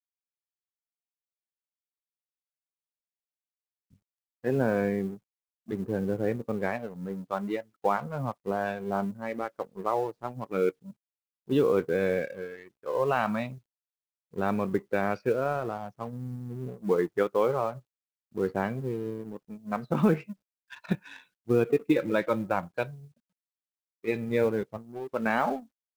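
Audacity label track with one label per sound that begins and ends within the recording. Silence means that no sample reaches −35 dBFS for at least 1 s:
4.450000	22.900000	sound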